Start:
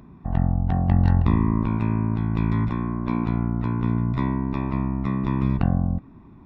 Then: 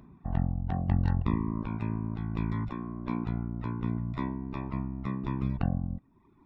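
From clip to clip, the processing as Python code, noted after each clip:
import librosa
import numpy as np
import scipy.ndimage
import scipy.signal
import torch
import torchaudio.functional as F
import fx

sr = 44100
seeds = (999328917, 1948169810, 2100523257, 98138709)

y = fx.dereverb_blind(x, sr, rt60_s=1.1)
y = F.gain(torch.from_numpy(y), -6.0).numpy()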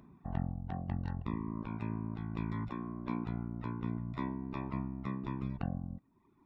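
y = fx.low_shelf(x, sr, hz=81.0, db=-8.5)
y = fx.rider(y, sr, range_db=10, speed_s=0.5)
y = F.gain(torch.from_numpy(y), -4.5).numpy()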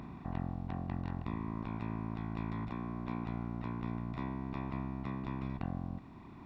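y = fx.bin_compress(x, sr, power=0.4)
y = F.gain(torch.from_numpy(y), -5.0).numpy()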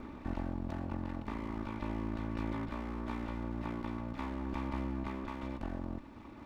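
y = fx.lower_of_two(x, sr, delay_ms=3.4)
y = F.gain(torch.from_numpy(y), 2.5).numpy()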